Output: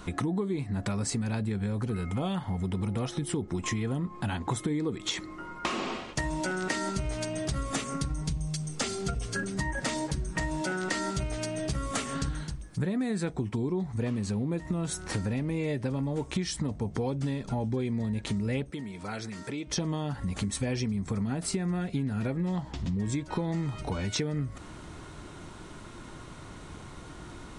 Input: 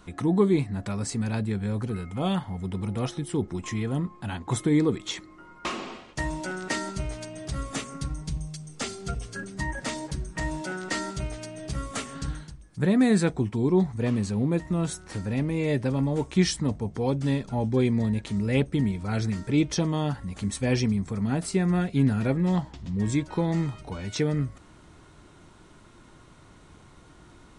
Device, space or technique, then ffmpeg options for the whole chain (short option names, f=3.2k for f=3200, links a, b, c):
serial compression, peaks first: -filter_complex "[0:a]acompressor=threshold=-30dB:ratio=6,acompressor=threshold=-38dB:ratio=2,asettb=1/sr,asplit=3[a][b][c];[a]atrim=end=18.714[d];[b]atrim=start=18.71:end=19.67,asetpts=PTS-STARTPTS,afade=t=in:d=0.004:c=qsin,afade=t=out:st=0.956:d=0.004:c=qsin,highpass=f=450:p=1[e];[c]atrim=start=19.666[f];[d][e]acrossfade=d=0.004:c1=hsin:c2=qsin[g];[g][f]acrossfade=d=0.004:c1=qsin:c2=hsin,volume=7.5dB"